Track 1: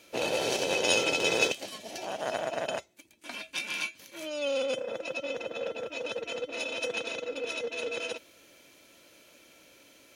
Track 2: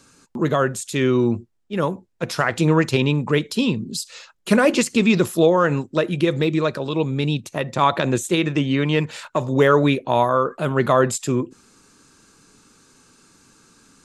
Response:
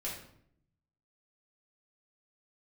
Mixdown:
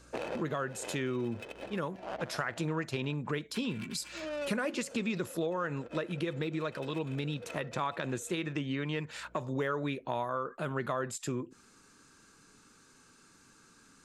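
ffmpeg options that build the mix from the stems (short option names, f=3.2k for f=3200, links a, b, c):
-filter_complex "[0:a]acompressor=threshold=-31dB:ratio=16,aeval=exprs='val(0)+0.00112*(sin(2*PI*60*n/s)+sin(2*PI*2*60*n/s)/2+sin(2*PI*3*60*n/s)/3+sin(2*PI*4*60*n/s)/4+sin(2*PI*5*60*n/s)/5)':c=same,adynamicsmooth=sensitivity=6.5:basefreq=560,volume=0dB,asplit=2[a][b];[b]volume=-14dB[c];[1:a]volume=-8dB,asplit=2[d][e];[e]apad=whole_len=447781[f];[a][f]sidechaincompress=threshold=-43dB:ratio=3:attack=35:release=212[g];[c]aecho=0:1:355:1[h];[g][d][h]amix=inputs=3:normalize=0,equalizer=f=1.6k:t=o:w=0.98:g=4.5,acompressor=threshold=-33dB:ratio=3"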